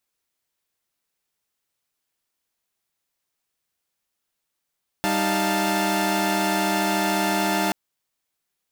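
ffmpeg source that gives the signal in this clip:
ffmpeg -f lavfi -i "aevalsrc='0.0668*((2*mod(196*t,1)-1)+(2*mod(311.13*t,1)-1)+(2*mod(698.46*t,1)-1)+(2*mod(880*t,1)-1))':duration=2.68:sample_rate=44100" out.wav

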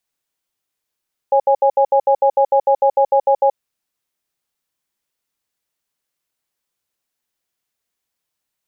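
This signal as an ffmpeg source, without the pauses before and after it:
ffmpeg -f lavfi -i "aevalsrc='0.237*(sin(2*PI*549*t)+sin(2*PI*824*t))*clip(min(mod(t,0.15),0.08-mod(t,0.15))/0.005,0,1)':duration=2.24:sample_rate=44100" out.wav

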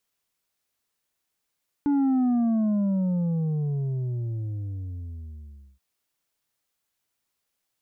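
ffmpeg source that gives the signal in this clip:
ffmpeg -f lavfi -i "aevalsrc='0.1*clip((3.93-t)/3.59,0,1)*tanh(1.78*sin(2*PI*290*3.93/log(65/290)*(exp(log(65/290)*t/3.93)-1)))/tanh(1.78)':duration=3.93:sample_rate=44100" out.wav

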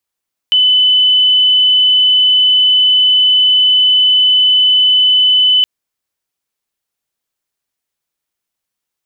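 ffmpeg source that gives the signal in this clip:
ffmpeg -f lavfi -i "sine=frequency=3010:duration=5.12:sample_rate=44100,volume=11.56dB" out.wav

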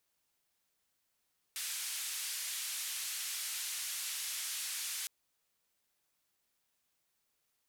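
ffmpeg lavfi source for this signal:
ffmpeg -f lavfi -i "anoisesrc=color=white:duration=3.51:sample_rate=44100:seed=1,highpass=frequency=2000,lowpass=frequency=12000,volume=-31.2dB" out.wav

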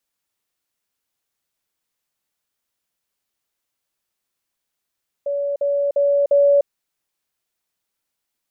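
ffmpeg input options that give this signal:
ffmpeg -f lavfi -i "aevalsrc='pow(10,(-19.5+3*floor(t/0.35))/20)*sin(2*PI*568*t)*clip(min(mod(t,0.35),0.3-mod(t,0.35))/0.005,0,1)':duration=1.4:sample_rate=44100" out.wav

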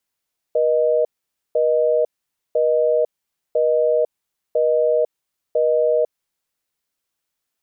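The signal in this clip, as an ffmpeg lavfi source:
ffmpeg -f lavfi -i "aevalsrc='0.141*(sin(2*PI*480*t)+sin(2*PI*620*t))*clip(min(mod(t,1),0.5-mod(t,1))/0.005,0,1)':duration=5.92:sample_rate=44100" out.wav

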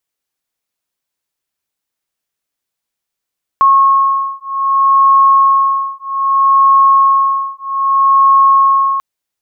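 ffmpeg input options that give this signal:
ffmpeg -f lavfi -i "aevalsrc='0.299*(sin(2*PI*1090*t)+sin(2*PI*1090.63*t))':duration=5.39:sample_rate=44100" out.wav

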